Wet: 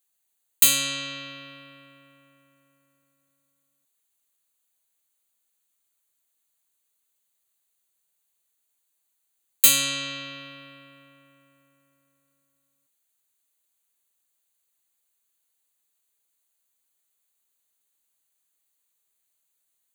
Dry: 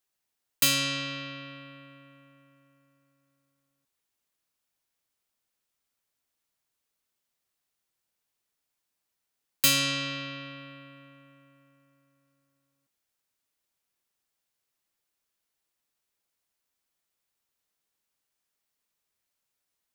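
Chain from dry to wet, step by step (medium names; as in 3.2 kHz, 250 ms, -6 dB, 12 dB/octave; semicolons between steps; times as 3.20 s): Butterworth band-stop 5.3 kHz, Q 3.4; tone controls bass -5 dB, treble +10 dB; trim -1 dB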